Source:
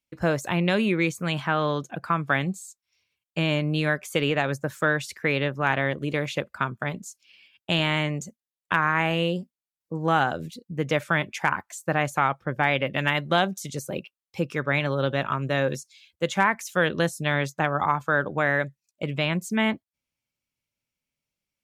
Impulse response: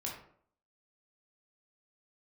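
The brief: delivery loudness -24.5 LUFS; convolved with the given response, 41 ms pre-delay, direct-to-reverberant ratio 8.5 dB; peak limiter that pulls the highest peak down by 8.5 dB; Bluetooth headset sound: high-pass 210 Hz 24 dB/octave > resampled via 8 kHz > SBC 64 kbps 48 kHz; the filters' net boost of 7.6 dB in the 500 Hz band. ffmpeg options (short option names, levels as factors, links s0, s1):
-filter_complex "[0:a]equalizer=f=500:t=o:g=9,alimiter=limit=0.251:level=0:latency=1,asplit=2[s0][s1];[1:a]atrim=start_sample=2205,adelay=41[s2];[s1][s2]afir=irnorm=-1:irlink=0,volume=0.355[s3];[s0][s3]amix=inputs=2:normalize=0,highpass=f=210:w=0.5412,highpass=f=210:w=1.3066,aresample=8000,aresample=44100,volume=1.06" -ar 48000 -c:a sbc -b:a 64k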